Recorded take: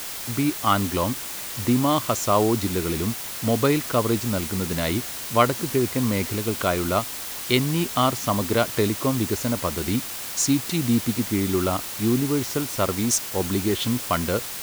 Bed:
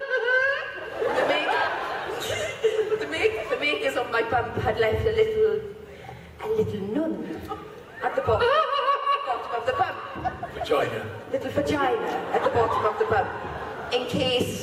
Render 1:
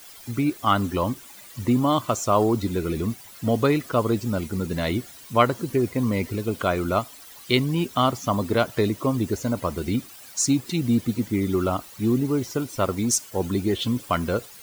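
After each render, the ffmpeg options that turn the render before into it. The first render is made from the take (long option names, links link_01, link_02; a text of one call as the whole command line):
ffmpeg -i in.wav -af "afftdn=noise_reduction=15:noise_floor=-33" out.wav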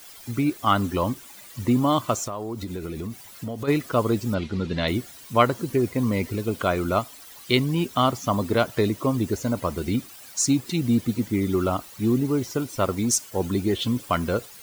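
ffmpeg -i in.wav -filter_complex "[0:a]asplit=3[link_01][link_02][link_03];[link_01]afade=type=out:start_time=2.24:duration=0.02[link_04];[link_02]acompressor=threshold=-28dB:ratio=6:attack=3.2:release=140:knee=1:detection=peak,afade=type=in:start_time=2.24:duration=0.02,afade=type=out:start_time=3.67:duration=0.02[link_05];[link_03]afade=type=in:start_time=3.67:duration=0.02[link_06];[link_04][link_05][link_06]amix=inputs=3:normalize=0,asettb=1/sr,asplit=3[link_07][link_08][link_09];[link_07]atrim=end=4.344[link_10];[link_08]atrim=start=4.34:end=4.88,asetpts=PTS-STARTPTS,afade=type=in:duration=0.004:curve=qsin,afade=type=out:start_time=0.536:duration=0.004:curve=qsin,lowpass=frequency=3700:width_type=q:width=1.8[link_11];[link_09]atrim=start=4.876[link_12];[link_10][link_11]acrossfade=duration=0.004:curve1=hsin:curve2=qsin[link_13];[link_13][link_12]acrossfade=duration=0.004:curve1=qsin:curve2=hsin" out.wav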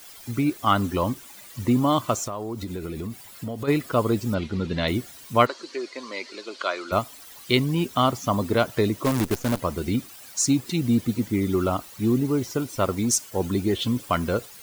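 ffmpeg -i in.wav -filter_complex "[0:a]asettb=1/sr,asplit=3[link_01][link_02][link_03];[link_01]atrim=end=2.734[link_04];[link_02]atrim=start=2.73:end=4.18,asetpts=PTS-STARTPTS,afade=type=in:duration=0.004:curve=qsin,afade=type=out:start_time=1.446:duration=0.004:curve=qsin,bandreject=frequency=6000:width=12[link_05];[link_03]atrim=start=4.176[link_06];[link_04][link_05]acrossfade=duration=0.004:curve1=hsin:curve2=qsin[link_07];[link_07][link_06]acrossfade=duration=0.004:curve1=qsin:curve2=hsin,asplit=3[link_08][link_09][link_10];[link_08]afade=type=out:start_time=5.45:duration=0.02[link_11];[link_09]highpass=frequency=410:width=0.5412,highpass=frequency=410:width=1.3066,equalizer=frequency=460:width_type=q:width=4:gain=-9,equalizer=frequency=760:width_type=q:width=4:gain=-8,equalizer=frequency=4400:width_type=q:width=4:gain=10,lowpass=frequency=6700:width=0.5412,lowpass=frequency=6700:width=1.3066,afade=type=in:start_time=5.45:duration=0.02,afade=type=out:start_time=6.91:duration=0.02[link_12];[link_10]afade=type=in:start_time=6.91:duration=0.02[link_13];[link_11][link_12][link_13]amix=inputs=3:normalize=0,asplit=3[link_14][link_15][link_16];[link_14]afade=type=out:start_time=9.04:duration=0.02[link_17];[link_15]acrusher=bits=5:dc=4:mix=0:aa=0.000001,afade=type=in:start_time=9.04:duration=0.02,afade=type=out:start_time=9.58:duration=0.02[link_18];[link_16]afade=type=in:start_time=9.58:duration=0.02[link_19];[link_17][link_18][link_19]amix=inputs=3:normalize=0" out.wav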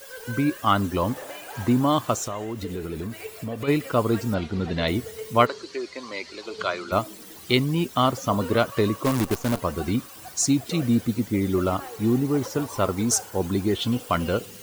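ffmpeg -i in.wav -i bed.wav -filter_complex "[1:a]volume=-16dB[link_01];[0:a][link_01]amix=inputs=2:normalize=0" out.wav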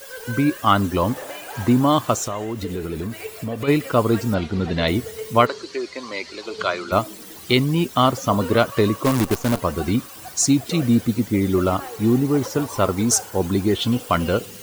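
ffmpeg -i in.wav -af "volume=4dB,alimiter=limit=-2dB:level=0:latency=1" out.wav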